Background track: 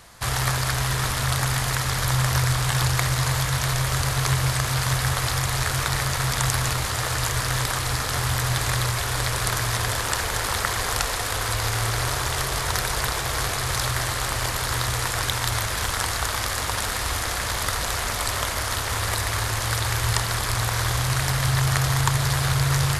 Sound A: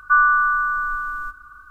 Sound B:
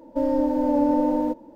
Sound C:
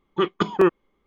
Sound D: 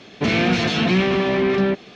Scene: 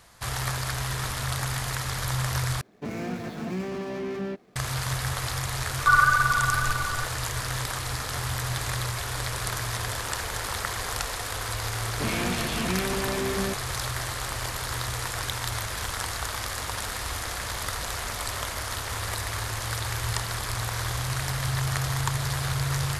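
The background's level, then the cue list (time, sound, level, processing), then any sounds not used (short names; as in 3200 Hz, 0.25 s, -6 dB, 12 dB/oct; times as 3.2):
background track -6 dB
2.61 replace with D -13 dB + median filter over 15 samples
5.76 add A -6.5 dB + phaser 2 Hz, delay 3.7 ms, feedback 66%
11.79 add D -11 dB
not used: B, C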